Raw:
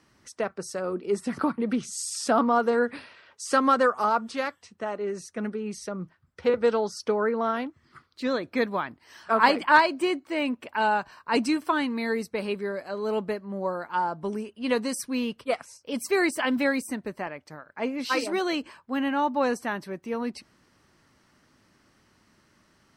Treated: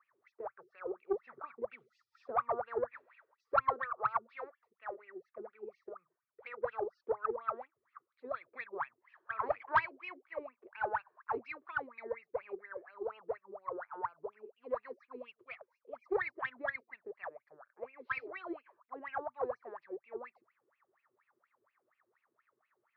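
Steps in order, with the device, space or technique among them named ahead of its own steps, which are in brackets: wah-wah guitar rig (wah-wah 4.2 Hz 350–2700 Hz, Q 13; valve stage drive 23 dB, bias 0.4; cabinet simulation 83–3500 Hz, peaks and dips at 120 Hz +7 dB, 200 Hz -9 dB, 290 Hz -8 dB, 1.2 kHz +6 dB, 2.9 kHz -10 dB); 12.03–12.93 s: resonant high shelf 2.8 kHz -6 dB, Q 1.5; trim +2.5 dB

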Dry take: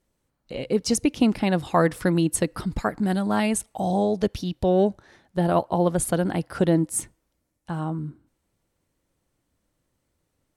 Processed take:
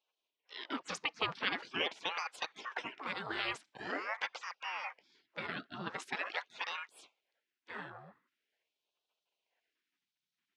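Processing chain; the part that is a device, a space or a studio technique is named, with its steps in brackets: voice changer toy (ring modulator with a swept carrier 1.1 kHz, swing 75%, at 0.44 Hz; cabinet simulation 500–4900 Hz, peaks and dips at 510 Hz +9 dB, 820 Hz +6 dB, 1.2 kHz +10 dB, 1.9 kHz +4 dB, 2.8 kHz +3 dB, 4.6 kHz -3 dB); spectral gate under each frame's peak -20 dB weak; 6.15–6.81 s: bass shelf 260 Hz -10.5 dB

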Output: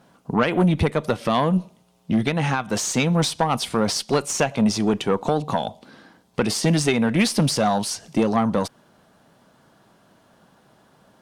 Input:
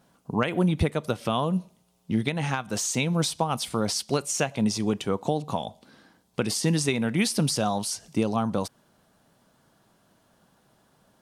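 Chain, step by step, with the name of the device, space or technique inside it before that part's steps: tube preamp driven hard (valve stage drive 18 dB, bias 0.3; bass shelf 93 Hz -7 dB; treble shelf 5.4 kHz -8.5 dB); trim +9 dB

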